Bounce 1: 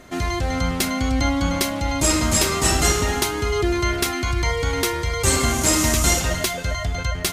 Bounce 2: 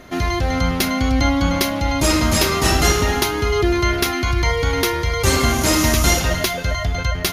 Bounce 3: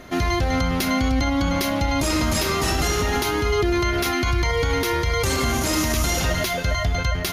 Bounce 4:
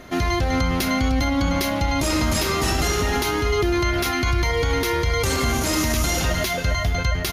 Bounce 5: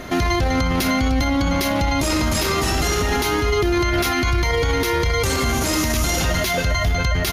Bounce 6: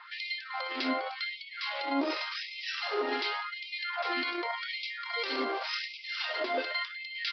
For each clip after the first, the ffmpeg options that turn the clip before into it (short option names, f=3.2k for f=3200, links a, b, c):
-af "equalizer=f=8k:t=o:w=0.27:g=-15,volume=3.5dB"
-af "alimiter=limit=-12.5dB:level=0:latency=1:release=58"
-af "aecho=1:1:403:0.158"
-af "alimiter=limit=-20dB:level=0:latency=1:release=46,volume=8.5dB"
-filter_complex "[0:a]acrossover=split=1500[a][b];[a]aeval=exprs='val(0)*(1-0.7/2+0.7/2*cos(2*PI*2*n/s))':c=same[c];[b]aeval=exprs='val(0)*(1-0.7/2-0.7/2*cos(2*PI*2*n/s))':c=same[d];[c][d]amix=inputs=2:normalize=0,aresample=11025,aresample=44100,afftfilt=real='re*gte(b*sr/1024,230*pow(2100/230,0.5+0.5*sin(2*PI*0.88*pts/sr)))':imag='im*gte(b*sr/1024,230*pow(2100/230,0.5+0.5*sin(2*PI*0.88*pts/sr)))':win_size=1024:overlap=0.75,volume=-6dB"